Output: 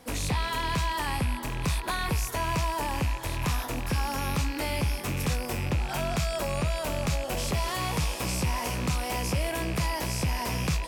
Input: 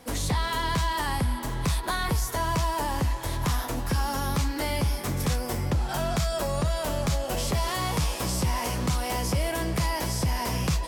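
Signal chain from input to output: rattling part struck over -37 dBFS, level -24 dBFS; gain -2 dB

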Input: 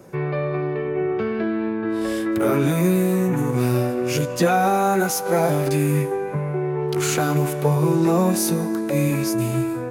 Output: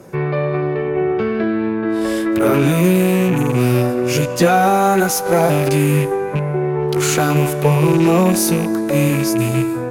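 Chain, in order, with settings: rattling part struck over -22 dBFS, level -24 dBFS; added harmonics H 8 -31 dB, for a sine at -6 dBFS; gain +5 dB

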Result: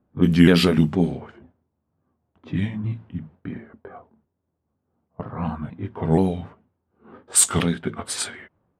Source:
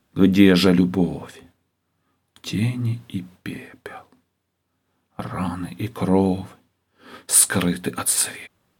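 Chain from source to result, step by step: repeated pitch sweeps -3 st, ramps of 0.475 s; low-pass opened by the level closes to 800 Hz, open at -13 dBFS

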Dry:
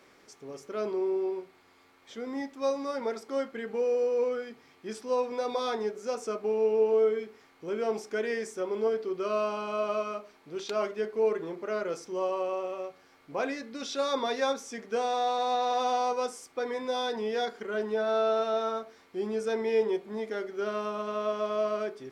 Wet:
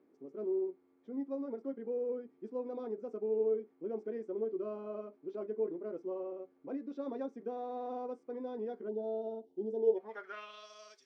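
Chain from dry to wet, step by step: time stretch by phase-locked vocoder 0.5×; spectral gain 8.89–9.97, 950–2800 Hz -22 dB; band-pass sweep 300 Hz -> 5700 Hz, 9.74–10.7

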